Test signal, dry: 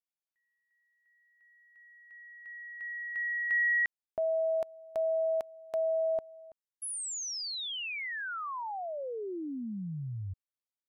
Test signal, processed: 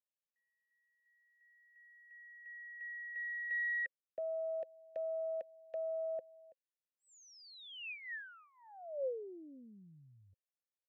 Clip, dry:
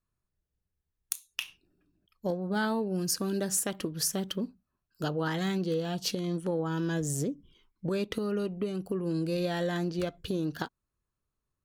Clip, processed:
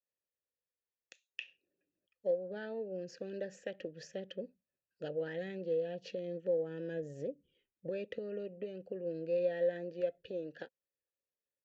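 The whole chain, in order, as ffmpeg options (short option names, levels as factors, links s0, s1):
-filter_complex "[0:a]acrossover=split=190|1000|2100[s0][s1][s2][s3];[s0]dynaudnorm=f=790:g=7:m=3.16[s4];[s4][s1][s2][s3]amix=inputs=4:normalize=0,aresample=16000,aresample=44100,aeval=exprs='0.188*(cos(1*acos(clip(val(0)/0.188,-1,1)))-cos(1*PI/2))+0.0075*(cos(4*acos(clip(val(0)/0.188,-1,1)))-cos(4*PI/2))':c=same,asplit=3[s5][s6][s7];[s5]bandpass=f=530:t=q:w=8,volume=1[s8];[s6]bandpass=f=1840:t=q:w=8,volume=0.501[s9];[s7]bandpass=f=2480:t=q:w=8,volume=0.355[s10];[s8][s9][s10]amix=inputs=3:normalize=0,adynamicequalizer=threshold=0.00224:dfrequency=1500:dqfactor=0.7:tfrequency=1500:tqfactor=0.7:attack=5:release=100:ratio=0.375:range=3:mode=cutabove:tftype=highshelf,volume=1.33"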